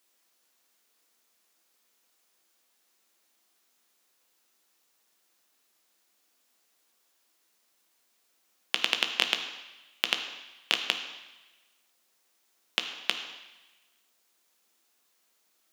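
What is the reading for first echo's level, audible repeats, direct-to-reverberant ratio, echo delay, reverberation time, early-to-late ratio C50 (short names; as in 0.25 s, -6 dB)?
none, none, 5.0 dB, none, 1.1 s, 7.5 dB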